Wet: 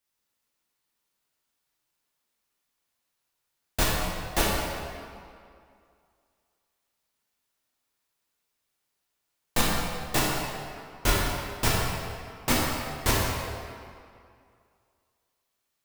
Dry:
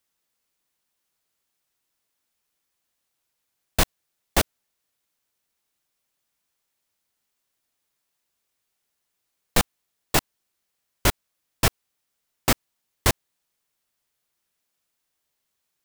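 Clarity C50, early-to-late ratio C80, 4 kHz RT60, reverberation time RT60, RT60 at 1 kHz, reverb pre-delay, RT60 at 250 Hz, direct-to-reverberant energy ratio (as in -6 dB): -1.5 dB, 0.0 dB, 1.6 s, 2.3 s, 2.4 s, 8 ms, 2.3 s, -6.0 dB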